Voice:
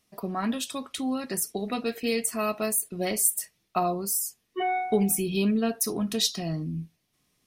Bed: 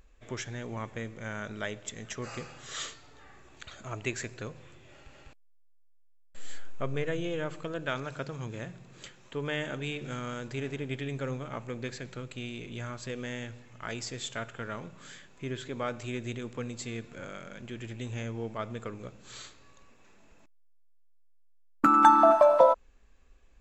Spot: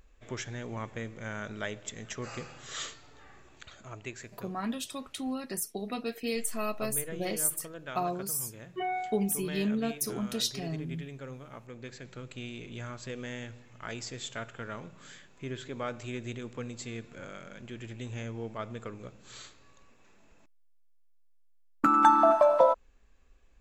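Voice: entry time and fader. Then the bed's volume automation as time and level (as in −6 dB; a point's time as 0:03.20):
4.20 s, −5.5 dB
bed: 0:03.38 −0.5 dB
0:04.15 −8.5 dB
0:11.70 −8.5 dB
0:12.32 −2 dB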